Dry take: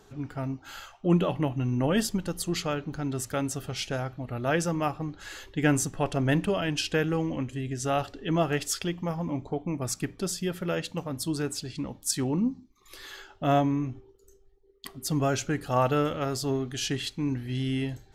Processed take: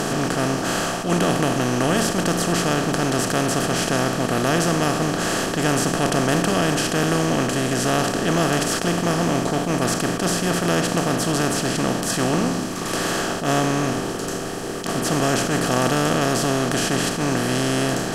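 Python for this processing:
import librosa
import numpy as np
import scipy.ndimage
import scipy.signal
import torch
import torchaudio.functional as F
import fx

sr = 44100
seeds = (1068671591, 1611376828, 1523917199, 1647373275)

y = fx.bin_compress(x, sr, power=0.2)
y = fx.attack_slew(y, sr, db_per_s=120.0)
y = F.gain(torch.from_numpy(y), -2.5).numpy()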